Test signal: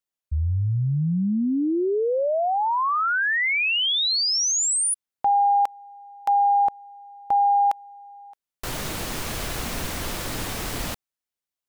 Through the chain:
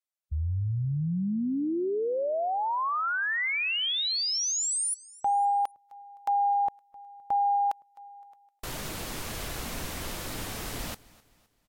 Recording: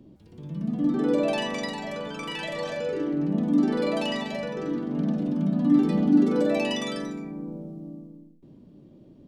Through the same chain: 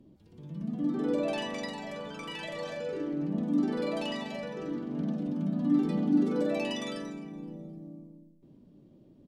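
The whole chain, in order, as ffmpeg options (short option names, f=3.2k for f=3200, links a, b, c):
-af "aecho=1:1:258|516|774:0.0794|0.0334|0.014,volume=-6dB" -ar 48000 -c:a libvorbis -b:a 64k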